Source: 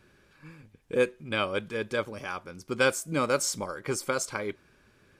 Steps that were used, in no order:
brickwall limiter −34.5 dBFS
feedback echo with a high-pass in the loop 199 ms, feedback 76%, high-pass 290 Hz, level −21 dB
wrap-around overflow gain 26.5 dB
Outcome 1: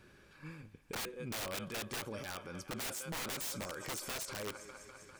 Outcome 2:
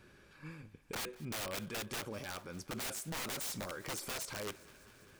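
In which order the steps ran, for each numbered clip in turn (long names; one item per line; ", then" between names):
feedback echo with a high-pass in the loop, then wrap-around overflow, then brickwall limiter
wrap-around overflow, then brickwall limiter, then feedback echo with a high-pass in the loop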